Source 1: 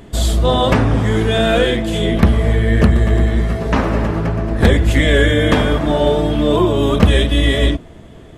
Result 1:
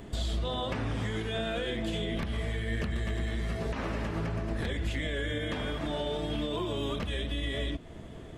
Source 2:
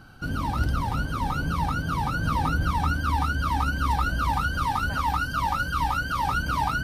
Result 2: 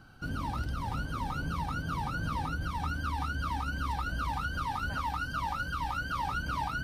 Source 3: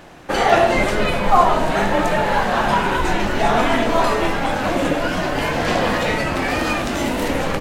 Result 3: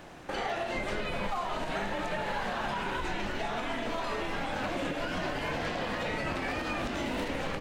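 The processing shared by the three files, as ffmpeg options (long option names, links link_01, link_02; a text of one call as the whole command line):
ffmpeg -i in.wav -filter_complex "[0:a]equalizer=frequency=12000:width=4.6:gain=-5.5,acrossover=split=1900|4800[link_01][link_02][link_03];[link_01]acompressor=threshold=-23dB:ratio=4[link_04];[link_02]acompressor=threshold=-31dB:ratio=4[link_05];[link_03]acompressor=threshold=-49dB:ratio=4[link_06];[link_04][link_05][link_06]amix=inputs=3:normalize=0,alimiter=limit=-17.5dB:level=0:latency=1:release=121,volume=-6dB" out.wav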